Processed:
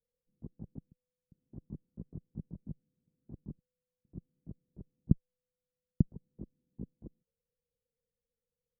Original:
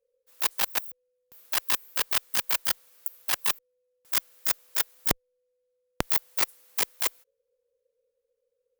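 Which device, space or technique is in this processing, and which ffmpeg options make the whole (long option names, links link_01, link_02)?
the neighbour's flat through the wall: -af "lowpass=frequency=240:width=0.5412,lowpass=frequency=240:width=1.3066,equalizer=frequency=160:width_type=o:width=0.88:gain=6.5,volume=5.5dB"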